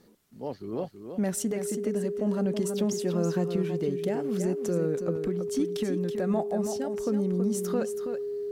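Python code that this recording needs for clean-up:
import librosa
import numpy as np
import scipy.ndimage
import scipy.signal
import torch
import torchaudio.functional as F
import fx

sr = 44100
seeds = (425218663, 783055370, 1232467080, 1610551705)

y = fx.notch(x, sr, hz=410.0, q=30.0)
y = fx.fix_echo_inverse(y, sr, delay_ms=326, level_db=-8.0)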